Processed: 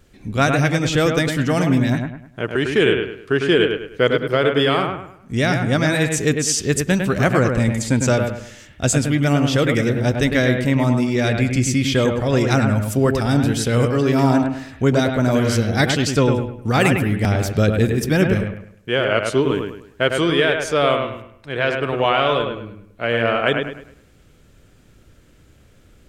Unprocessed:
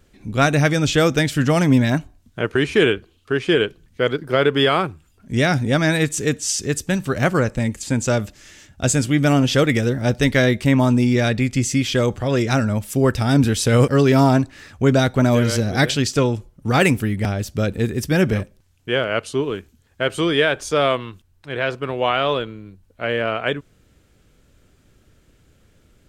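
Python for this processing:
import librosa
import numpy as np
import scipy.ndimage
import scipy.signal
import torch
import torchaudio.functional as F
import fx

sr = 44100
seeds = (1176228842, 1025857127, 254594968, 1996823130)

y = fx.rider(x, sr, range_db=4, speed_s=0.5)
y = fx.echo_bbd(y, sr, ms=103, stages=2048, feedback_pct=35, wet_db=-5.0)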